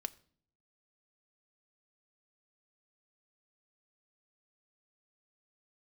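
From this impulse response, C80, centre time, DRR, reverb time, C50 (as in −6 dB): 24.0 dB, 2 ms, 11.0 dB, 0.50 s, 21.0 dB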